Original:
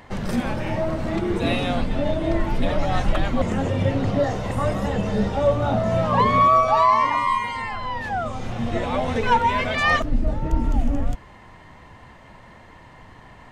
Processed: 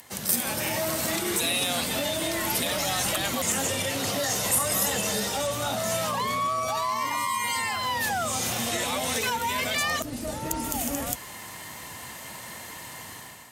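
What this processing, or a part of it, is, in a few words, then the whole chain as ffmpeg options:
FM broadcast chain: -filter_complex "[0:a]highpass=68,highpass=f=110:p=1,dynaudnorm=f=410:g=3:m=11.5dB,acrossover=split=350|1000[a][b][c];[a]acompressor=threshold=-26dB:ratio=4[d];[b]acompressor=threshold=-23dB:ratio=4[e];[c]acompressor=threshold=-23dB:ratio=4[f];[d][e][f]amix=inputs=3:normalize=0,aemphasis=mode=production:type=75fm,alimiter=limit=-12.5dB:level=0:latency=1:release=29,asoftclip=type=hard:threshold=-14.5dB,lowpass=f=15k:w=0.5412,lowpass=f=15k:w=1.3066,aemphasis=mode=production:type=75fm,volume=-7.5dB"

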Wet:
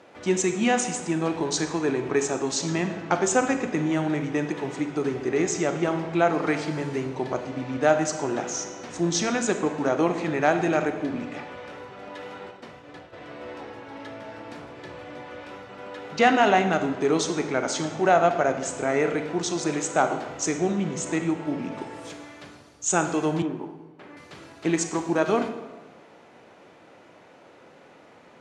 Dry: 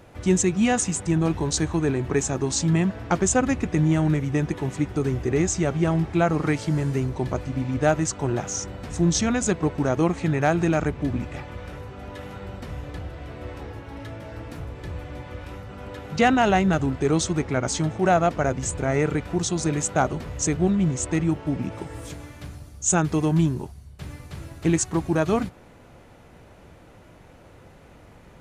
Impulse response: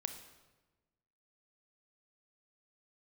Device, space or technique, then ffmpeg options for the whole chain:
supermarket ceiling speaker: -filter_complex "[0:a]highpass=290,lowpass=6.3k[a];[1:a]atrim=start_sample=2205[b];[a][b]afir=irnorm=-1:irlink=0,asplit=3[c][d][e];[c]afade=t=out:st=12.5:d=0.02[f];[d]agate=range=-33dB:threshold=-37dB:ratio=3:detection=peak,afade=t=in:st=12.5:d=0.02,afade=t=out:st=13.12:d=0.02[g];[e]afade=t=in:st=13.12:d=0.02[h];[f][g][h]amix=inputs=3:normalize=0,asettb=1/sr,asplit=3[i][j][k];[i]atrim=end=23.424[l];[j]atrim=start=23.42:end=24.17,asetpts=PTS-STARTPTS,afade=t=in:d=0.004:c=qsin,afade=t=out:st=0.746:d=0.004:c=qsin,acrossover=split=200 2500:gain=0.224 1 0.141[m][n][o];[m][n][o]amix=inputs=3:normalize=0[p];[k]atrim=start=24.166[q];[l][p]acrossfade=d=0.004:c1=hsin:c2=qsin[r];[r][q]acrossfade=d=0.004:c1=qsin:c2=hsin,volume=2.5dB"

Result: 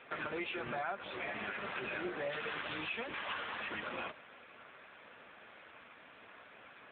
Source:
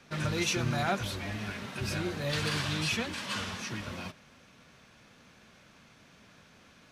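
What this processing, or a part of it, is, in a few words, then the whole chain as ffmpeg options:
voicemail: -af "highpass=420,lowpass=2.9k,acompressor=threshold=-42dB:ratio=10,volume=7.5dB" -ar 8000 -c:a libopencore_amrnb -b:a 7950

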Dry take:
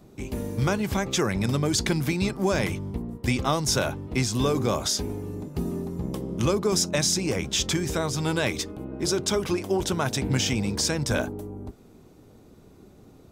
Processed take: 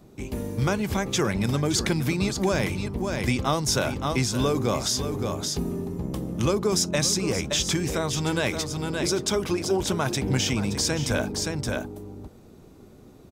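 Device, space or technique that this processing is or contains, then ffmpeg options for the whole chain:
ducked delay: -filter_complex "[0:a]asplit=3[a][b][c];[b]adelay=572,volume=-3dB[d];[c]apad=whole_len=612253[e];[d][e]sidechaincompress=threshold=-33dB:ratio=8:attack=36:release=128[f];[a][f]amix=inputs=2:normalize=0"

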